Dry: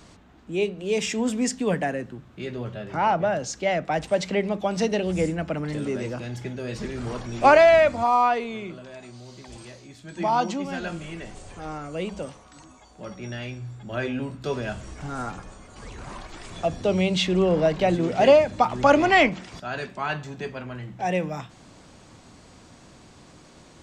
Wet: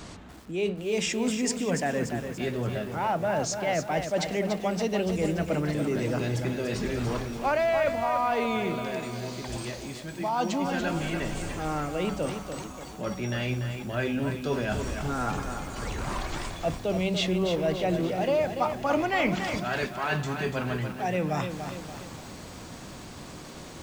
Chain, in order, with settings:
reversed playback
downward compressor 4 to 1, threshold −34 dBFS, peak gain reduction 19 dB
reversed playback
feedback echo at a low word length 289 ms, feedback 55%, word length 9 bits, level −7 dB
level +7 dB

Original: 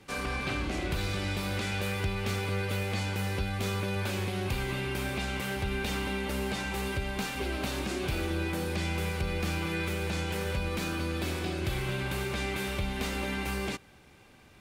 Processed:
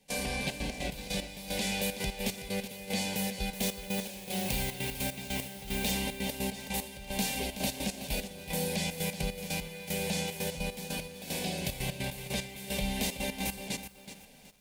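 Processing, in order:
high-shelf EQ 6,500 Hz +9 dB
phaser with its sweep stopped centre 340 Hz, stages 6
0:03.53–0:05.91: background noise blue −45 dBFS
gate pattern ".xxxx.x.x..x.." 150 BPM −12 dB
feedback echo at a low word length 374 ms, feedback 35%, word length 9 bits, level −10.5 dB
level +3 dB

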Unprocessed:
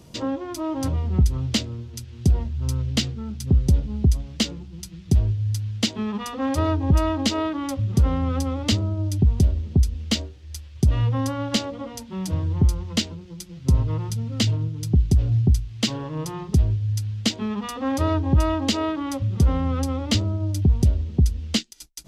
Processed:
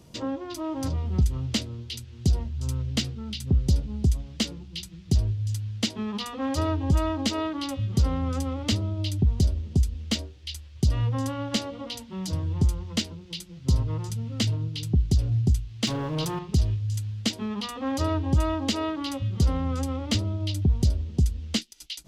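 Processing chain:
0:15.87–0:16.39: leveller curve on the samples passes 2
on a send: echo through a band-pass that steps 357 ms, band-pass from 3,500 Hz, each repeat 0.7 octaves, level −5 dB
on the sum: level −4 dB

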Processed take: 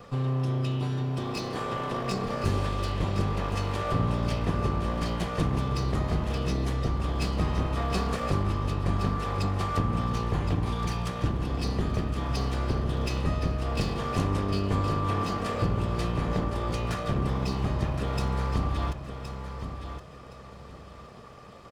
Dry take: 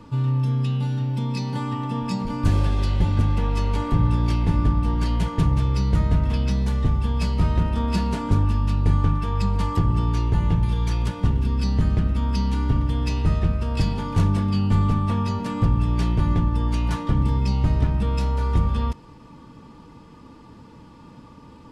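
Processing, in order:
lower of the sound and its delayed copy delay 1.6 ms
in parallel at −1.5 dB: downward compressor, threshold −27 dBFS, peak gain reduction 12.5 dB
on the sum: low-shelf EQ 100 Hz −11 dB
repeating echo 1,068 ms, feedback 25%, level −9 dB
level −4 dB

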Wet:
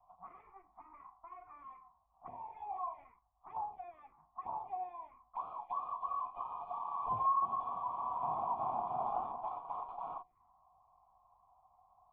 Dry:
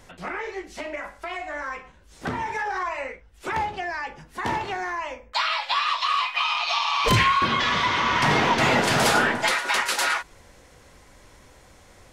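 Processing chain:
lower of the sound and its delayed copy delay 0.95 ms
phaser swept by the level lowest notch 300 Hz, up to 2,000 Hz, full sweep at −24.5 dBFS
formant resonators in series a

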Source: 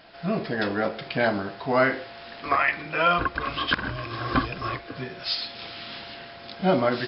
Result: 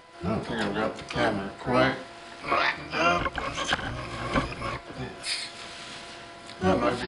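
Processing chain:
steady tone 1,000 Hz −50 dBFS
pitch-shifted copies added −12 semitones −5 dB, −3 semitones −15 dB, +12 semitones −7 dB
level −4 dB

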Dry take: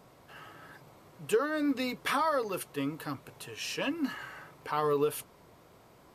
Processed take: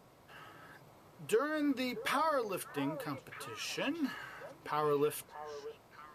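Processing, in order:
echo through a band-pass that steps 628 ms, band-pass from 680 Hz, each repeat 1.4 octaves, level −9 dB
level −3.5 dB

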